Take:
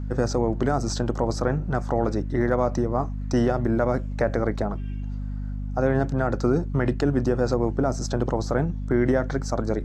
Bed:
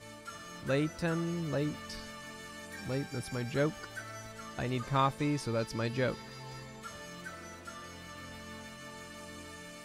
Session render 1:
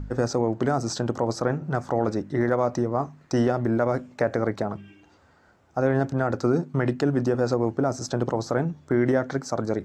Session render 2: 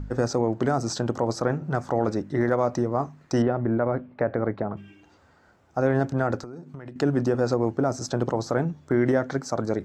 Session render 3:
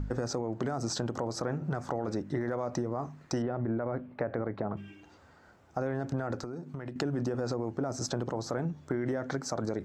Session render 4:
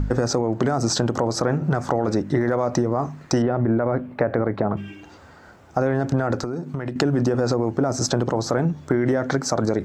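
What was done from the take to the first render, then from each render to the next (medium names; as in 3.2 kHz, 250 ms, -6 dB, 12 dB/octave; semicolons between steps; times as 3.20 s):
de-hum 50 Hz, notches 5
3.42–4.77 s: distance through air 430 m; 6.40–6.96 s: compression 10:1, threshold -35 dBFS
peak limiter -17 dBFS, peak gain reduction 6.5 dB; compression, threshold -28 dBFS, peak gain reduction 7 dB
trim +11.5 dB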